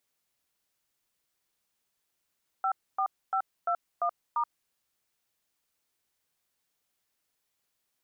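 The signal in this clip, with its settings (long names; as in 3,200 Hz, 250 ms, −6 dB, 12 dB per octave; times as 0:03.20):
touch tones "54521*", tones 78 ms, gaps 266 ms, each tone −27.5 dBFS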